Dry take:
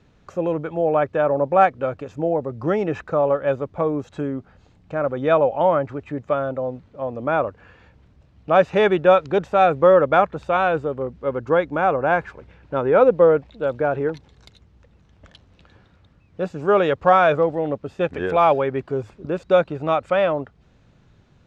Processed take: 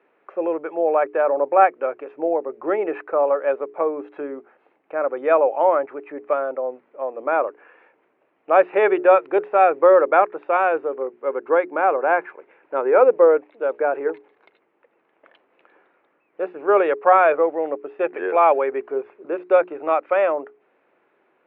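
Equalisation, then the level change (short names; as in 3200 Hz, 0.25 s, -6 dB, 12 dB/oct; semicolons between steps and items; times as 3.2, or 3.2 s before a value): Chebyshev band-pass 350–2400 Hz, order 3; air absorption 58 m; notches 60/120/180/240/300/360/420 Hz; +1.5 dB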